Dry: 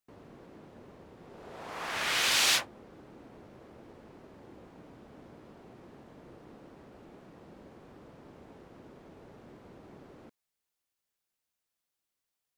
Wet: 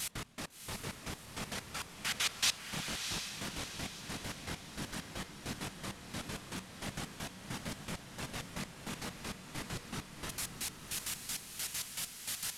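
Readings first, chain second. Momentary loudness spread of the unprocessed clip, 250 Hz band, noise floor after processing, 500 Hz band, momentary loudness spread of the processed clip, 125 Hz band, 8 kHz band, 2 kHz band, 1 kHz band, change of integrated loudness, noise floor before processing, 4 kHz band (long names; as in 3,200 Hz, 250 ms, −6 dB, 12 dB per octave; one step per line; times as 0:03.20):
22 LU, +5.0 dB, −52 dBFS, −2.0 dB, 7 LU, +9.5 dB, 0.0 dB, −5.0 dB, −3.5 dB, −13.0 dB, below −85 dBFS, −4.0 dB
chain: linear delta modulator 64 kbit/s, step −27 dBFS
tilt shelving filter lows −5.5 dB, about 1,100 Hz
random phases in short frames
chorus effect 2.3 Hz, delay 20 ms, depth 5.8 ms
gate pattern "x.x..x..." 198 BPM −24 dB
low shelf with overshoot 260 Hz +7.5 dB, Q 1.5
on a send: feedback delay with all-pass diffusion 679 ms, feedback 47%, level −6 dB
on the sum: level −4.5 dB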